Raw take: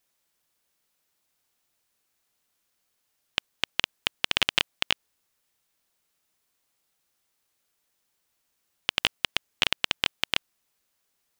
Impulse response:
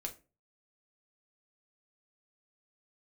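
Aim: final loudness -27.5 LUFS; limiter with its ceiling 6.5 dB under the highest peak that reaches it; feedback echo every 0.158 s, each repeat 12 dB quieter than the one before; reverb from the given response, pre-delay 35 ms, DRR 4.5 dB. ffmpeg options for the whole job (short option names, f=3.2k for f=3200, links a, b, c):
-filter_complex "[0:a]alimiter=limit=-8.5dB:level=0:latency=1,aecho=1:1:158|316|474:0.251|0.0628|0.0157,asplit=2[a][b];[1:a]atrim=start_sample=2205,adelay=35[c];[b][c]afir=irnorm=-1:irlink=0,volume=-3dB[d];[a][d]amix=inputs=2:normalize=0,volume=5.5dB"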